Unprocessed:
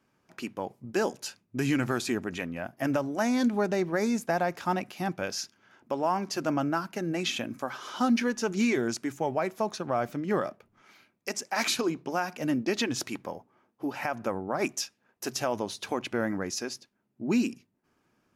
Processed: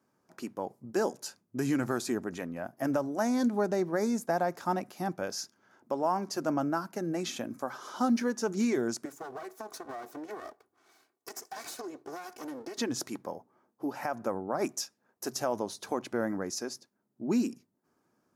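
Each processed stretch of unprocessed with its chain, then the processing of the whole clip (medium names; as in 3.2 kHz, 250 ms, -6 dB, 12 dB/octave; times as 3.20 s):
9.05–12.78 s: comb filter that takes the minimum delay 2.7 ms + high-pass 330 Hz 6 dB/octave + compression 12:1, threshold -34 dBFS
whole clip: high-pass 190 Hz 6 dB/octave; peaking EQ 2.7 kHz -12 dB 1.2 oct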